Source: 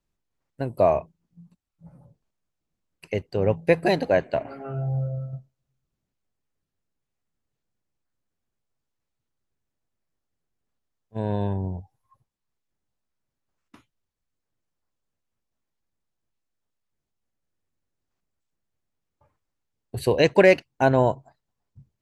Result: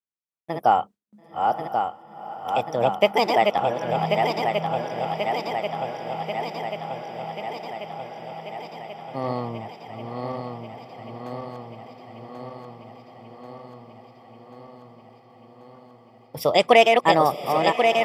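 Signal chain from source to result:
feedback delay that plays each chunk backwards 663 ms, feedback 81%, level −4 dB
noise gate with hold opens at −50 dBFS
high-pass filter 320 Hz 6 dB per octave
on a send: feedback delay with all-pass diffusion 1,134 ms, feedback 73%, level −13.5 dB
on the sum: speed change +22%
level +2.5 dB

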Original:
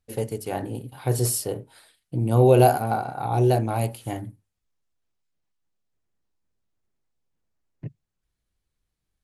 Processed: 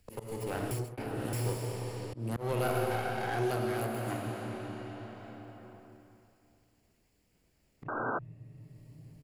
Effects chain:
lower of the sound and its delayed copy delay 0.4 ms
0:02.52–0:04.26: high-pass filter 160 Hz 12 dB per octave
repeating echo 318 ms, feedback 17%, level −23 dB
comb and all-pass reverb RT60 2.7 s, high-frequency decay 0.85×, pre-delay 25 ms, DRR 1.5 dB
0:07.88–0:08.19: sound drawn into the spectrogram noise 210–1,600 Hz −22 dBFS
volume swells 414 ms
0:00.71–0:01.33: reverse
multiband upward and downward compressor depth 70%
level −7.5 dB

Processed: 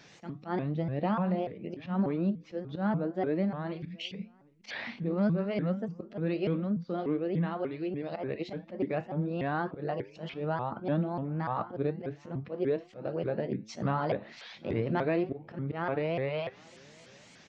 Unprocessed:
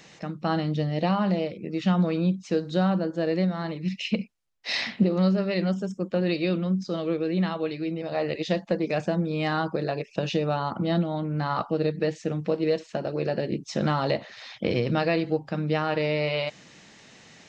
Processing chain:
treble cut that deepens with the level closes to 1,900 Hz, closed at −24.5 dBFS
volume swells 105 ms
tuned comb filter 110 Hz, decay 0.41 s, harmonics all, mix 50%
slap from a distant wall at 130 metres, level −26 dB
pitch modulation by a square or saw wave saw up 3.4 Hz, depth 250 cents

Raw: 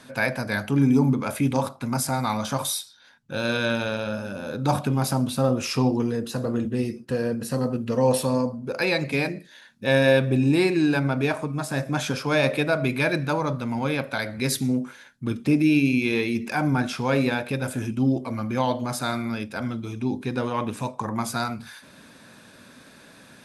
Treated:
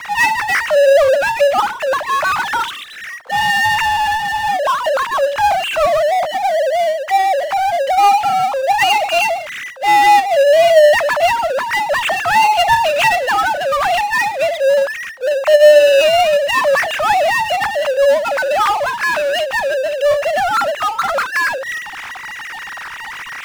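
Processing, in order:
three sine waves on the formant tracks
in parallel at −1.5 dB: output level in coarse steps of 12 dB
on the sum: single-sideband voice off tune +290 Hz 250–2,900 Hz
power curve on the samples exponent 0.5

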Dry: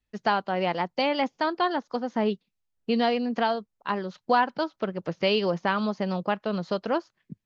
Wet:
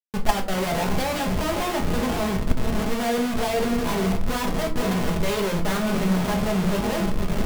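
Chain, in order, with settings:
on a send: feedback delay with all-pass diffusion 541 ms, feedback 43%, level −13 dB
on the sum: comparator with hysteresis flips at −35.5 dBFS
rectangular room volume 200 cubic metres, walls furnished, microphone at 1.4 metres
noise gate −14 dBFS, range −26 dB
boost into a limiter +29.5 dB
level −3.5 dB

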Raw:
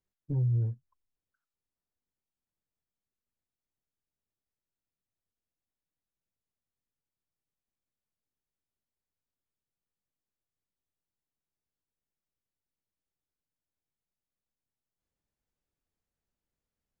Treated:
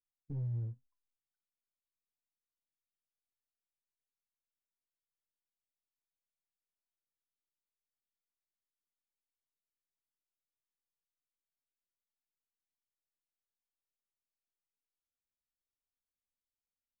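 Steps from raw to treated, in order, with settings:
noise gate −51 dBFS, range −11 dB
low-shelf EQ 140 Hz +6.5 dB
tuned comb filter 250 Hz, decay 0.19 s, harmonics all, mix 70%
in parallel at −8.5 dB: hard clipping −39 dBFS, distortion −8 dB
on the sum: level −5 dB

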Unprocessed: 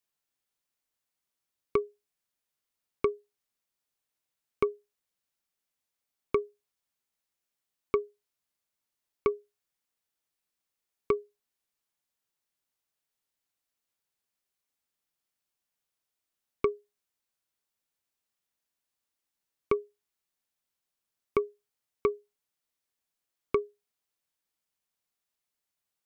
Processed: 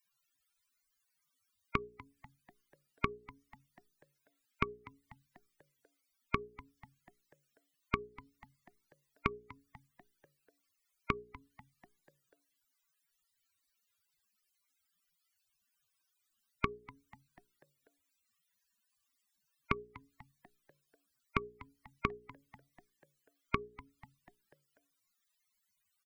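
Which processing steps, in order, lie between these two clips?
mains-hum notches 60/120/180/240/300/360/420 Hz
spectral peaks only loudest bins 64
downward compressor, threshold −41 dBFS, peak gain reduction 17.5 dB
flat-topped bell 530 Hz −12 dB
echo with shifted repeats 245 ms, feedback 57%, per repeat −140 Hz, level −19.5 dB
level +13.5 dB

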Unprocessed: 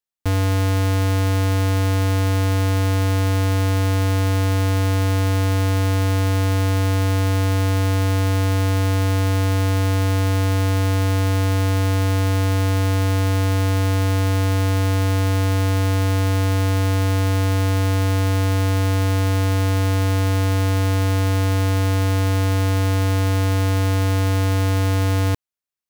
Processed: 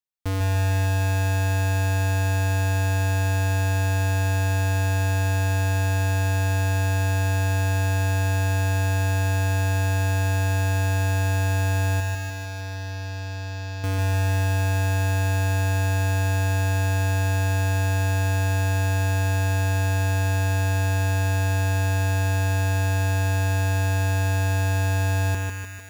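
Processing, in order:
0:12.00–0:13.84: transistor ladder low-pass 5,800 Hz, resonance 50%
on a send: feedback echo with a high-pass in the loop 152 ms, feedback 71%, high-pass 510 Hz, level −6 dB
on the sum: feedback echo at a low word length 147 ms, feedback 55%, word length 8 bits, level −5 dB
level −6 dB

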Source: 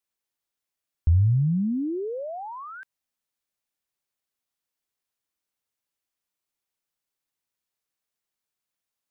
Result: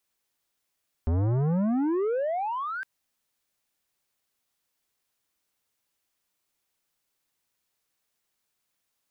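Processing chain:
soft clipping −31 dBFS, distortion −5 dB
level +7.5 dB

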